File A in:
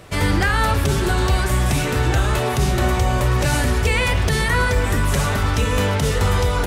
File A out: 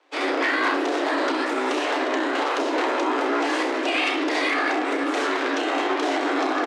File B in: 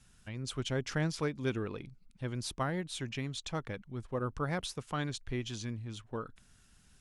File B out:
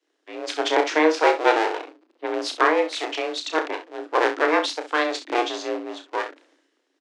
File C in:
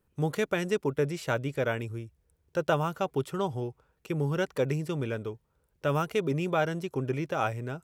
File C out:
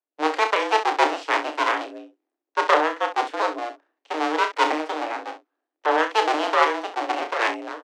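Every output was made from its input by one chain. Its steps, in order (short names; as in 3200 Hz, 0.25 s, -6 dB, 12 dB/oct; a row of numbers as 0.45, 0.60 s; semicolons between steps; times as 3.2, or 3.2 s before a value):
cycle switcher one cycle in 2, inverted; HPF 56 Hz 12 dB/oct; frequency shift +230 Hz; air absorption 130 m; early reflections 32 ms -7 dB, 66 ms -10.5 dB; limiter -12.5 dBFS; bell 340 Hz -4.5 dB 1.2 oct; three-band expander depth 70%; match loudness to -23 LUFS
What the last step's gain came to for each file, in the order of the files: +0.5, +15.0, +8.0 dB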